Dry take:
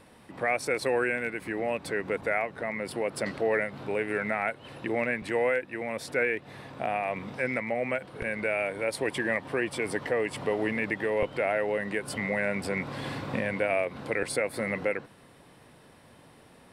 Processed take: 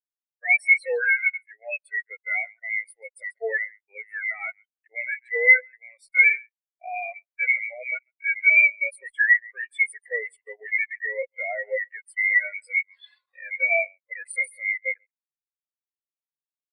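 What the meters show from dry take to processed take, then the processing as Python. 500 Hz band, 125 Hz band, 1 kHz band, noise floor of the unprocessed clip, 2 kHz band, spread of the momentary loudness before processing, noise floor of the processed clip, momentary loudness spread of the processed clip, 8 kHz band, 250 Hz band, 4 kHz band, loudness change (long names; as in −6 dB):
−6.0 dB, below −40 dB, −6.5 dB, −55 dBFS, +10.5 dB, 5 LU, below −85 dBFS, 18 LU, can't be measured, below −35 dB, below −10 dB, +7.5 dB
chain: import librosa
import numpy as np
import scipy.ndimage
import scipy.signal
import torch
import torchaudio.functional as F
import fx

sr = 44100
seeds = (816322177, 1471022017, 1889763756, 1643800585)

y = scipy.signal.sosfilt(scipy.signal.butter(2, 380.0, 'highpass', fs=sr, output='sos'), x)
y = np.diff(y, prepend=0.0)
y = y + 10.0 ** (-10.5 / 20.0) * np.pad(y, (int(138 * sr / 1000.0), 0))[:len(y)]
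y = fx.fuzz(y, sr, gain_db=48.0, gate_db=-54.0)
y = fx.spectral_expand(y, sr, expansion=4.0)
y = y * 10.0 ** (4.5 / 20.0)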